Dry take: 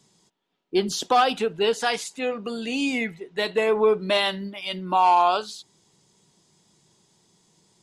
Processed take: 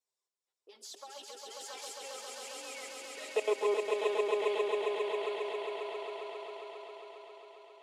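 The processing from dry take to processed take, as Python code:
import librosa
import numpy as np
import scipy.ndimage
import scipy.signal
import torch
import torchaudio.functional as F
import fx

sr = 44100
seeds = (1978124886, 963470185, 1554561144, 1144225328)

y = fx.doppler_pass(x, sr, speed_mps=29, closest_m=24.0, pass_at_s=3.02)
y = fx.level_steps(y, sr, step_db=22)
y = fx.env_flanger(y, sr, rest_ms=7.8, full_db=-29.5)
y = scipy.signal.sosfilt(scipy.signal.butter(4, 460.0, 'highpass', fs=sr, output='sos'), y)
y = fx.echo_swell(y, sr, ms=135, loudest=5, wet_db=-4.0)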